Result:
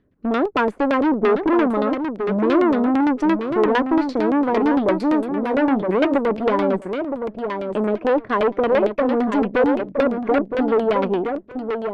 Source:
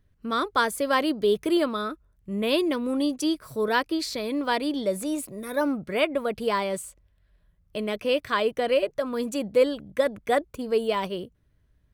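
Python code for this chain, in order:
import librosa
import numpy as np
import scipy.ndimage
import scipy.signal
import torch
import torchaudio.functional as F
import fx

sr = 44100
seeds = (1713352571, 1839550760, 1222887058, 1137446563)

y = fx.peak_eq(x, sr, hz=280.0, db=14.5, octaves=1.8)
y = fx.tube_stage(y, sr, drive_db=20.0, bias=0.65)
y = fx.low_shelf(y, sr, hz=180.0, db=-11.5)
y = fx.echo_feedback(y, sr, ms=967, feedback_pct=15, wet_db=-6.5)
y = fx.filter_lfo_lowpass(y, sr, shape='saw_down', hz=8.8, low_hz=560.0, high_hz=3500.0, q=0.99)
y = y * librosa.db_to_amplitude(7.0)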